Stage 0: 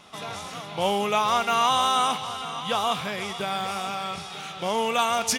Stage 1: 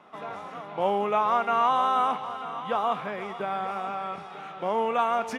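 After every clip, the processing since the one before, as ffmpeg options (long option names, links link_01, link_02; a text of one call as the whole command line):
ffmpeg -i in.wav -filter_complex "[0:a]acrossover=split=190 2000:gain=0.158 1 0.0794[link_01][link_02][link_03];[link_01][link_02][link_03]amix=inputs=3:normalize=0" out.wav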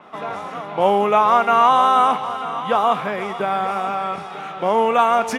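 ffmpeg -i in.wav -af "adynamicequalizer=threshold=0.00355:dfrequency=6000:dqfactor=0.7:tfrequency=6000:tqfactor=0.7:attack=5:release=100:ratio=0.375:range=2.5:mode=boostabove:tftype=highshelf,volume=9dB" out.wav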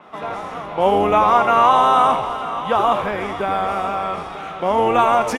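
ffmpeg -i in.wav -filter_complex "[0:a]asplit=5[link_01][link_02][link_03][link_04][link_05];[link_02]adelay=82,afreqshift=-110,volume=-8dB[link_06];[link_03]adelay=164,afreqshift=-220,volume=-16.6dB[link_07];[link_04]adelay=246,afreqshift=-330,volume=-25.3dB[link_08];[link_05]adelay=328,afreqshift=-440,volume=-33.9dB[link_09];[link_01][link_06][link_07][link_08][link_09]amix=inputs=5:normalize=0" out.wav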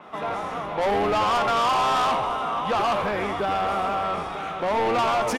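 ffmpeg -i in.wav -af "asoftclip=type=tanh:threshold=-19dB" out.wav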